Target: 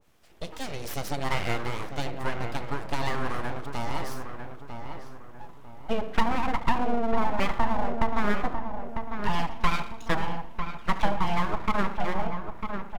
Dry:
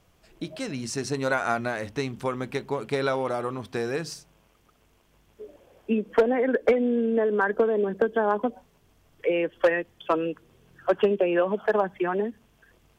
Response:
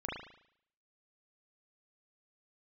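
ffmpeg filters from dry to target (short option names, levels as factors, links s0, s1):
-filter_complex "[0:a]asplit=2[s0][s1];[1:a]atrim=start_sample=2205,adelay=35[s2];[s1][s2]afir=irnorm=-1:irlink=0,volume=0.224[s3];[s0][s3]amix=inputs=2:normalize=0,aeval=exprs='abs(val(0))':c=same,asplit=2[s4][s5];[s5]adelay=949,lowpass=f=1600:p=1,volume=0.473,asplit=2[s6][s7];[s7]adelay=949,lowpass=f=1600:p=1,volume=0.4,asplit=2[s8][s9];[s9]adelay=949,lowpass=f=1600:p=1,volume=0.4,asplit=2[s10][s11];[s11]adelay=949,lowpass=f=1600:p=1,volume=0.4,asplit=2[s12][s13];[s13]adelay=949,lowpass=f=1600:p=1,volume=0.4[s14];[s4][s6][s8][s10][s12][s14]amix=inputs=6:normalize=0,adynamicequalizer=threshold=0.00891:dfrequency=1700:dqfactor=0.7:tfrequency=1700:tqfactor=0.7:attack=5:release=100:ratio=0.375:range=2:mode=cutabove:tftype=highshelf"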